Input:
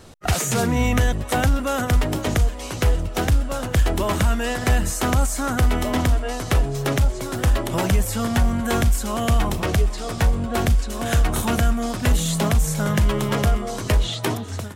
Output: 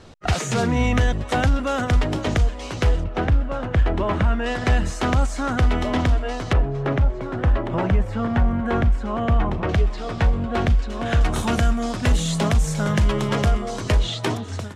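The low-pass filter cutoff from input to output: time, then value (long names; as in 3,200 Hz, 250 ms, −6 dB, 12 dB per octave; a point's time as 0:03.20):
5,400 Hz
from 0:03.04 2,300 Hz
from 0:04.46 4,500 Hz
from 0:06.53 1,900 Hz
from 0:09.69 3,500 Hz
from 0:11.21 7,000 Hz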